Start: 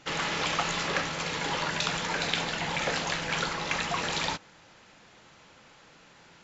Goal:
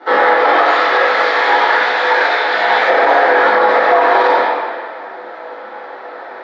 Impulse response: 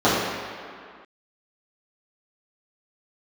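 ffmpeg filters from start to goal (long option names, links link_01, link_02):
-filter_complex "[0:a]asettb=1/sr,asplit=3[link_01][link_02][link_03];[link_01]atrim=end=0.614[link_04];[link_02]atrim=start=0.61:end=2.88,asetpts=PTS-STARTPTS,afade=type=in:duration=0.004:curve=qsin,afade=type=out:start_time=2.266:duration=0.004:curve=qsin,tiltshelf=frequency=1400:gain=-8.5[link_05];[link_03]atrim=start=2.876[link_06];[link_04][link_05]acrossfade=duration=0.004:curve1=hsin:curve2=qsin[link_07];[link_07][link_06]acrossfade=duration=0.004:curve1=qsin:curve2=hsin,acompressor=threshold=-29dB:ratio=16,flanger=delay=18:depth=3.1:speed=1.1,aeval=exprs='(mod(20*val(0)+1,2)-1)/20':channel_layout=same,highpass=frequency=330:width=0.5412,highpass=frequency=330:width=1.3066,equalizer=frequency=510:width_type=q:width=4:gain=4,equalizer=frequency=720:width_type=q:width=4:gain=8,equalizer=frequency=1200:width_type=q:width=4:gain=3,equalizer=frequency=1800:width_type=q:width=4:gain=5,equalizer=frequency=2800:width_type=q:width=4:gain=-9,lowpass=frequency=3600:width=0.5412,lowpass=frequency=3600:width=1.3066[link_08];[1:a]atrim=start_sample=2205,asetrate=52920,aresample=44100[link_09];[link_08][link_09]afir=irnorm=-1:irlink=0,alimiter=level_in=3.5dB:limit=-1dB:release=50:level=0:latency=1,volume=-1dB"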